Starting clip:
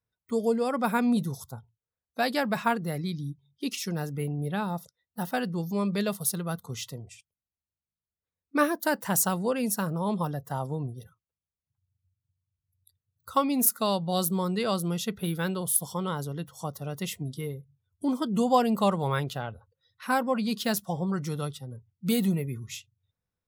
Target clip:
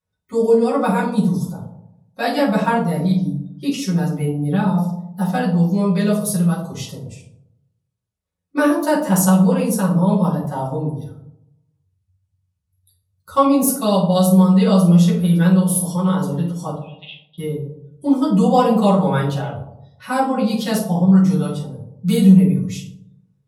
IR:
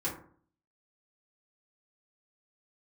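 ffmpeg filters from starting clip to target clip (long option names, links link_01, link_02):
-filter_complex "[0:a]asettb=1/sr,asplit=3[link_01][link_02][link_03];[link_01]atrim=end=16.734[link_04];[link_02]atrim=start=16.73:end=17.38,asetpts=PTS-STARTPTS,afade=type=in:duration=0.004:curve=qsin,afade=type=out:start_time=0.646:duration=0.004:curve=qsin,asuperpass=centerf=2900:order=8:qfactor=2.2[link_05];[link_03]atrim=start=17.376[link_06];[link_04][link_05]acrossfade=duration=0.004:curve1=hsin:curve2=qsin[link_07];[link_07][link_06]acrossfade=duration=0.004:curve1=qsin:curve2=hsin[link_08];[1:a]atrim=start_sample=2205,asetrate=24696,aresample=44100[link_09];[link_08][link_09]afir=irnorm=-1:irlink=0,volume=-1dB"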